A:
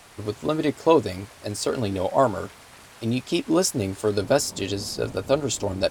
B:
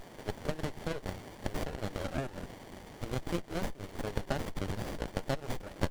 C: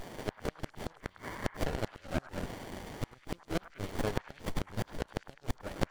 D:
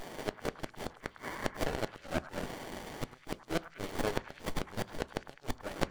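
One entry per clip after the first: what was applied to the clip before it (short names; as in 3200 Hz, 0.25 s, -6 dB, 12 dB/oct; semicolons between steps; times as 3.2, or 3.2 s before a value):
HPF 1400 Hz 12 dB/oct; compressor 6:1, threshold -37 dBFS, peak gain reduction 15.5 dB; running maximum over 33 samples; gain +7 dB
spectral gain 0.99–1.46, 920–2300 Hz +8 dB; flipped gate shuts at -24 dBFS, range -32 dB; delay with a stepping band-pass 0.103 s, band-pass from 1200 Hz, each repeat 0.7 oct, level -9 dB; gain +4.5 dB
low shelf 200 Hz -7 dB; on a send at -15 dB: reverb, pre-delay 3 ms; on the sum: gain +2 dB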